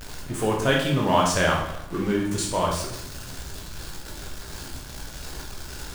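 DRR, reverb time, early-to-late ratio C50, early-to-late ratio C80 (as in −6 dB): −2.0 dB, 0.80 s, 4.0 dB, 7.0 dB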